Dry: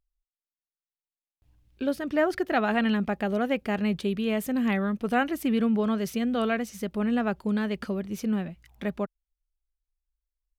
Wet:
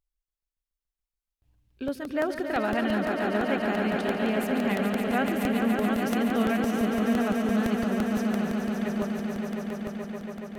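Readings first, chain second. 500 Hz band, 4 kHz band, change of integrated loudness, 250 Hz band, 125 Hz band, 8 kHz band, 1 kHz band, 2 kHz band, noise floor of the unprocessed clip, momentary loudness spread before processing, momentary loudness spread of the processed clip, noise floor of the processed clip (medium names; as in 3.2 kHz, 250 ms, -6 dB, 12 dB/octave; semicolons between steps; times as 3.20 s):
+1.0 dB, +1.0 dB, +0.5 dB, +1.0 dB, +1.0 dB, +1.5 dB, +1.0 dB, +1.0 dB, under -85 dBFS, 7 LU, 8 LU, under -85 dBFS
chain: echo with a slow build-up 142 ms, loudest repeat 5, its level -7 dB; crackling interface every 0.17 s, samples 64, repeat, from 0.35 s; trim -3.5 dB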